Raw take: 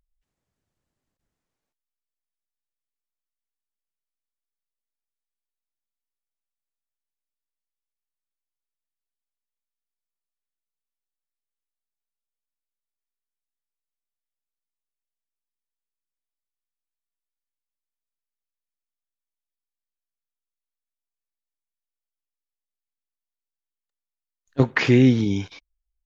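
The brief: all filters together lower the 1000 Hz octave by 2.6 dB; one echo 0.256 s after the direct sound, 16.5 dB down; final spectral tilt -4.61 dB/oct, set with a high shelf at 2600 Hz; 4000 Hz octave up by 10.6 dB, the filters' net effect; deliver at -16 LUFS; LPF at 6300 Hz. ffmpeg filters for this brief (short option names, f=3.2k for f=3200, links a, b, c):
-af "lowpass=6.3k,equalizer=f=1k:t=o:g=-5,highshelf=f=2.6k:g=7.5,equalizer=f=4k:t=o:g=8.5,aecho=1:1:256:0.15,volume=2.5dB"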